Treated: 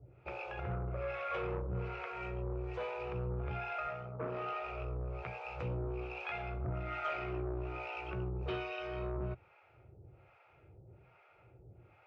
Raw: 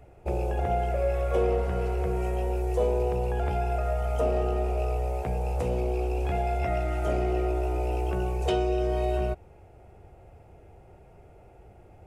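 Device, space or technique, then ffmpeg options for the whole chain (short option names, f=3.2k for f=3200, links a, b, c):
guitar amplifier with harmonic tremolo: -filter_complex "[0:a]acrossover=split=590[a][b];[a]aeval=exprs='val(0)*(1-1/2+1/2*cos(2*PI*1.2*n/s))':c=same[c];[b]aeval=exprs='val(0)*(1-1/2-1/2*cos(2*PI*1.2*n/s))':c=same[d];[c][d]amix=inputs=2:normalize=0,asoftclip=type=tanh:threshold=-26.5dB,highpass=86,equalizer=f=120:t=q:w=4:g=7,equalizer=f=230:t=q:w=4:g=-10,equalizer=f=440:t=q:w=4:g=-4,equalizer=f=720:t=q:w=4:g=-7,equalizer=f=1.3k:t=q:w=4:g=9,equalizer=f=2.4k:t=q:w=4:g=9,lowpass=f=4.3k:w=0.5412,lowpass=f=4.3k:w=1.3066,asettb=1/sr,asplit=3[e][f][g];[e]atrim=end=3.874[h];[f]atrim=start=3.87:end=4.54,asetpts=PTS-STARTPTS,afade=t=in:d=0.004:c=qsin,afade=t=out:st=0.666:d=0.004:c=qsin,highpass=f=110:w=0.5412,highpass=f=110:w=1.3066[i];[g]atrim=start=4.536[j];[h][i]acrossfade=d=0.004:c1=hsin:c2=qsin[k];[k][j]acrossfade=d=0.004:c1=qsin:c2=hsin,volume=-2dB"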